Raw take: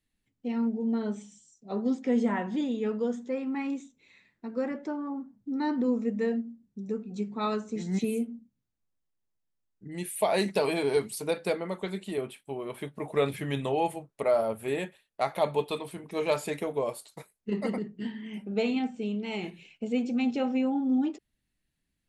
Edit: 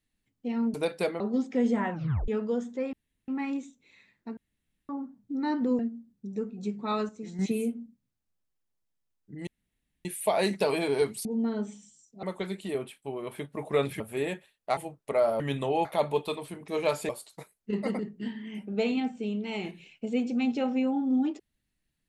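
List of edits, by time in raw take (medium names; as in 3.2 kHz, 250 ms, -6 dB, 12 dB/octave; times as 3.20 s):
0.74–1.72 s: swap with 11.20–11.66 s
2.44 s: tape stop 0.36 s
3.45 s: insert room tone 0.35 s
4.54–5.06 s: room tone
5.96–6.32 s: delete
7.62–7.92 s: gain -6.5 dB
10.00 s: insert room tone 0.58 s
13.43–13.88 s: swap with 14.51–15.28 s
16.52–16.88 s: delete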